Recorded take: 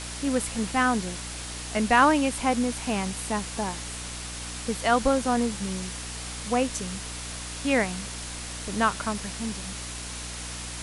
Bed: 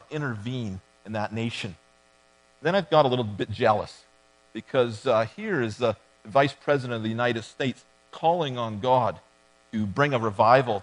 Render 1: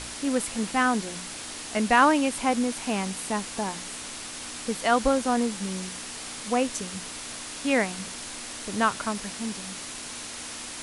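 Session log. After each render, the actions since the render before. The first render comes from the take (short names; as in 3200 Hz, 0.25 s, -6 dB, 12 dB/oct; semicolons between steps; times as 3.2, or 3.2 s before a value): de-hum 60 Hz, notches 3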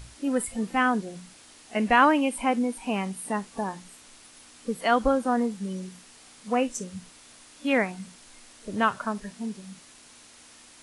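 noise print and reduce 14 dB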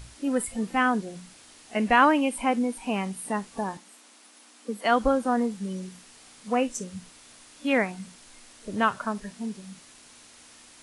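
3.77–4.85 rippled Chebyshev high-pass 200 Hz, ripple 3 dB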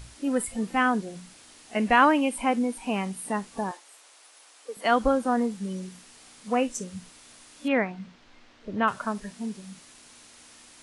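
3.71–4.77 inverse Chebyshev high-pass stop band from 160 Hz, stop band 50 dB; 7.68–8.88 air absorption 210 m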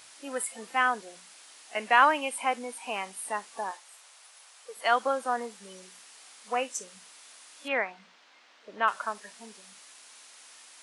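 HPF 660 Hz 12 dB/oct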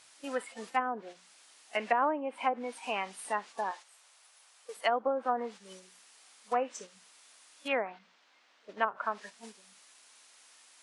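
treble ducked by the level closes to 640 Hz, closed at -22 dBFS; gate -46 dBFS, range -7 dB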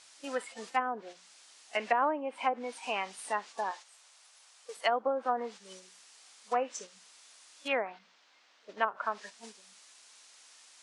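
LPF 7400 Hz 12 dB/oct; tone controls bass -4 dB, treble +6 dB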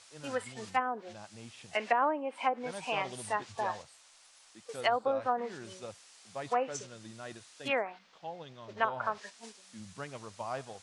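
add bed -20.5 dB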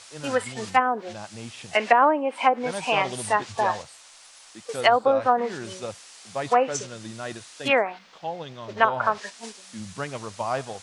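gain +10.5 dB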